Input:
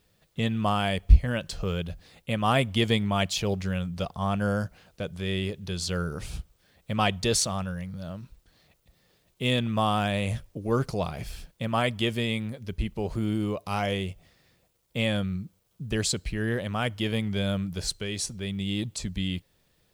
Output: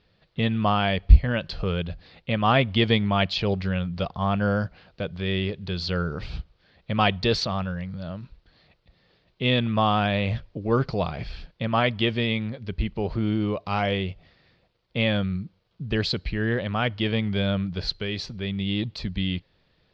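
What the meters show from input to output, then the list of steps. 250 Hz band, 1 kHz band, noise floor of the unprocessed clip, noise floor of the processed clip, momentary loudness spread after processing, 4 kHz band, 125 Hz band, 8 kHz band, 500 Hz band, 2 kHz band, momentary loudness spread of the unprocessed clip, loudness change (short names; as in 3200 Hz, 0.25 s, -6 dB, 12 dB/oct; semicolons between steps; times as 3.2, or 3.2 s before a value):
+3.0 dB, +3.5 dB, -68 dBFS, -67 dBFS, 13 LU, +3.0 dB, +3.0 dB, under -15 dB, +3.0 dB, +4.0 dB, 13 LU, +3.0 dB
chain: elliptic low-pass 4600 Hz, stop band 80 dB; gain +4 dB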